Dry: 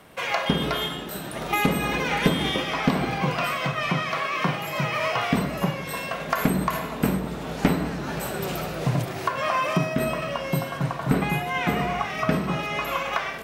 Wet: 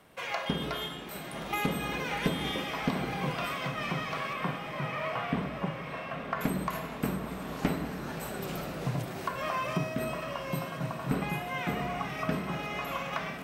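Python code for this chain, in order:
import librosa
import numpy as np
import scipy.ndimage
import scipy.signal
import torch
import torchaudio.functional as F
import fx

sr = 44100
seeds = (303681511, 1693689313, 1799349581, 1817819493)

y = fx.lowpass(x, sr, hz=2500.0, slope=12, at=(4.33, 6.41))
y = fx.echo_diffused(y, sr, ms=951, feedback_pct=57, wet_db=-10.0)
y = y * 10.0 ** (-8.5 / 20.0)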